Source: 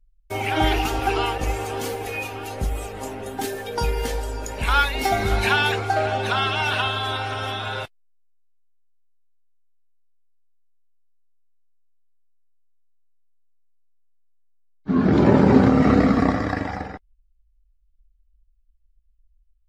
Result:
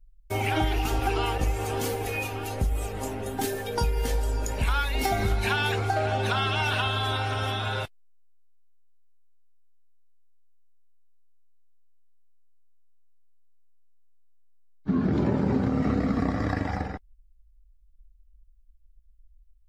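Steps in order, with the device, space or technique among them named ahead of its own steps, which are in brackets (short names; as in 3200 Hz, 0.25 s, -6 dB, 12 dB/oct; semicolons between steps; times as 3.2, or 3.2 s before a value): ASMR close-microphone chain (low shelf 200 Hz +7.5 dB; compressor 6:1, threshold -19 dBFS, peak gain reduction 12.5 dB; high shelf 7600 Hz +5 dB); gain -2.5 dB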